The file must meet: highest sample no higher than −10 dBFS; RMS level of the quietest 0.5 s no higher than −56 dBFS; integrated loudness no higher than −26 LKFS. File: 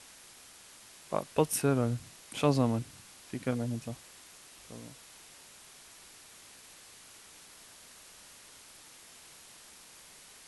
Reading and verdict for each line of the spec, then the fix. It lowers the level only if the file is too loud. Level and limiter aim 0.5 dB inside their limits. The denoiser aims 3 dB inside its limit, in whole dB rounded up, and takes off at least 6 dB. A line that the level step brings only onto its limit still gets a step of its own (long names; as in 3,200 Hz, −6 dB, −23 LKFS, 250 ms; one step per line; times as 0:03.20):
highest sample −11.0 dBFS: in spec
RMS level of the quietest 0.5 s −54 dBFS: out of spec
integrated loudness −32.0 LKFS: in spec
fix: broadband denoise 6 dB, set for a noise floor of −54 dBFS